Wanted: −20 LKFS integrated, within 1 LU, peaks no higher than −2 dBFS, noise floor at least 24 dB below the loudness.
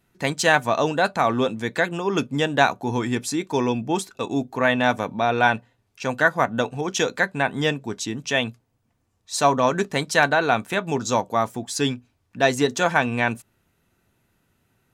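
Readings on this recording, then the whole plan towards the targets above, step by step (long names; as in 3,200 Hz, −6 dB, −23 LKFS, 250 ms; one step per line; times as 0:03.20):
integrated loudness −22.5 LKFS; sample peak −2.0 dBFS; target loudness −20.0 LKFS
→ level +2.5 dB
brickwall limiter −2 dBFS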